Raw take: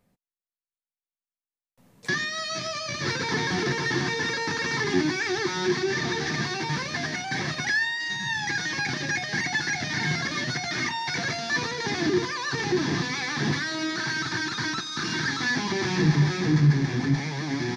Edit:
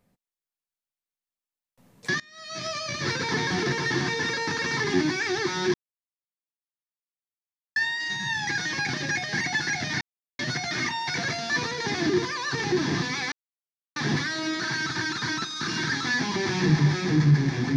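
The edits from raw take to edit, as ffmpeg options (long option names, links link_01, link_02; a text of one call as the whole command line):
ffmpeg -i in.wav -filter_complex "[0:a]asplit=7[link_01][link_02][link_03][link_04][link_05][link_06][link_07];[link_01]atrim=end=2.2,asetpts=PTS-STARTPTS,afade=type=out:start_time=2.196:duration=0.004:curve=hsin:silence=0.0668344[link_08];[link_02]atrim=start=2.2:end=5.74,asetpts=PTS-STARTPTS,afade=type=in:duration=0.46:curve=qua:silence=0.0668344,afade=type=out:start_time=3.536:duration=0.004:curve=hsin[link_09];[link_03]atrim=start=5.74:end=7.76,asetpts=PTS-STARTPTS,volume=0[link_10];[link_04]atrim=start=7.76:end=10.01,asetpts=PTS-STARTPTS,afade=type=in:duration=0.004:curve=hsin,afade=type=out:start_time=2.246:duration=0.004:curve=hsin[link_11];[link_05]atrim=start=10.01:end=10.39,asetpts=PTS-STARTPTS,volume=0[link_12];[link_06]atrim=start=10.39:end=13.32,asetpts=PTS-STARTPTS,afade=type=in:duration=0.004:curve=hsin,afade=type=out:start_time=2.926:duration=0.004:curve=hsin,apad=pad_dur=0.64[link_13];[link_07]atrim=start=13.32,asetpts=PTS-STARTPTS,afade=type=in:duration=0.004:curve=hsin[link_14];[link_08][link_09][link_10][link_11][link_12][link_13][link_14]concat=n=7:v=0:a=1" out.wav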